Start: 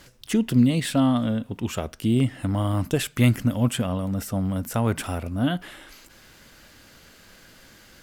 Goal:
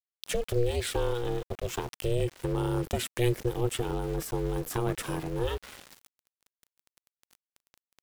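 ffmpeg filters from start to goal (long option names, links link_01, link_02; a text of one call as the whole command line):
ffmpeg -i in.wav -filter_complex "[0:a]asplit=2[link_01][link_02];[link_02]acompressor=threshold=-32dB:ratio=6,volume=0dB[link_03];[link_01][link_03]amix=inputs=2:normalize=0,asettb=1/sr,asplit=3[link_04][link_05][link_06];[link_04]atrim=end=1.434[link_07];[link_05]atrim=start=1.43:end=2.02,asetpts=PTS-STARTPTS,afade=type=in:duration=0.004:curve=qsin,afade=type=out:start_time=0.586:duration=0.004:curve=qsin,afreqshift=37[link_08];[link_06]atrim=start=2.016[link_09];[link_07][link_08]acrossfade=duration=0.004:curve1=hsin:curve2=qsin[link_10];[link_10][link_09]acrossfade=duration=0.004:curve1=qsin:curve2=hsin,acrossover=split=140|3000[link_11][link_12][link_13];[link_12]acompressor=threshold=-27dB:ratio=1.5[link_14];[link_11][link_14][link_13]amix=inputs=3:normalize=0,aeval=exprs='val(0)*gte(abs(val(0)),0.02)':channel_layout=same,aeval=exprs='val(0)*sin(2*PI*240*n/s)':channel_layout=same,volume=-3.5dB" out.wav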